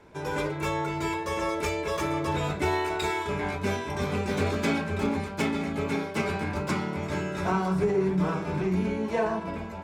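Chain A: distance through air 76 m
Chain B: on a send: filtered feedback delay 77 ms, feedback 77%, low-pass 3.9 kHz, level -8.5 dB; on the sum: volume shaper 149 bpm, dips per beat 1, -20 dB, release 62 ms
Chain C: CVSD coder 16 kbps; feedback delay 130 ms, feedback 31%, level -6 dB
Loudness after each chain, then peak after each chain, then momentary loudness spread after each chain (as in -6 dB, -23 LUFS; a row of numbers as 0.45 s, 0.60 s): -29.0 LUFS, -28.0 LUFS, -28.0 LUFS; -13.5 dBFS, -12.5 dBFS, -12.5 dBFS; 4 LU, 4 LU, 4 LU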